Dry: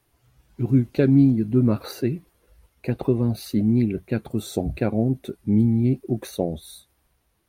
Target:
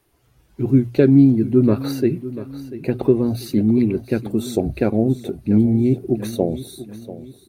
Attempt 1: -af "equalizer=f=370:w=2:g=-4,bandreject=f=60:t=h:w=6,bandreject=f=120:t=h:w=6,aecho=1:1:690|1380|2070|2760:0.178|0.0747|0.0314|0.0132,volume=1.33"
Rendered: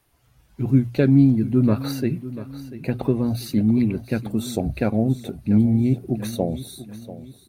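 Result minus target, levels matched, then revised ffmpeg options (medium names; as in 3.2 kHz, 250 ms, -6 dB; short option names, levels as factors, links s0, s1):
500 Hz band -4.0 dB
-af "equalizer=f=370:w=2:g=5,bandreject=f=60:t=h:w=6,bandreject=f=120:t=h:w=6,aecho=1:1:690|1380|2070|2760:0.178|0.0747|0.0314|0.0132,volume=1.33"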